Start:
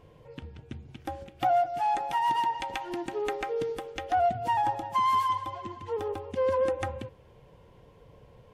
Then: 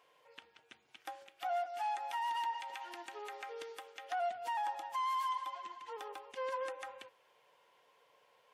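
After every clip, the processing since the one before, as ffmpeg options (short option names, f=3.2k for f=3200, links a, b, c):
-af "highpass=1k,alimiter=level_in=3dB:limit=-24dB:level=0:latency=1:release=79,volume=-3dB,volume=-2.5dB"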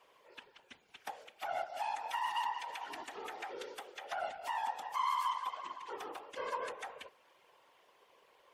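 -filter_complex "[0:a]afftfilt=real='hypot(re,im)*cos(2*PI*random(0))':imag='hypot(re,im)*sin(2*PI*random(1))':win_size=512:overlap=0.75,acrossover=split=390|790|5700[a][b][c][d];[b]acompressor=threshold=-59dB:ratio=6[e];[a][e][c][d]amix=inputs=4:normalize=0,volume=8.5dB"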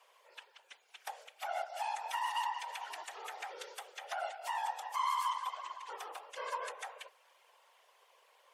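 -af "highpass=f=520:w=0.5412,highpass=f=520:w=1.3066,equalizer=f=8.9k:t=o:w=1.5:g=6"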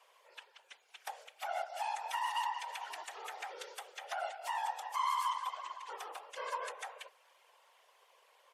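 -af "aresample=32000,aresample=44100"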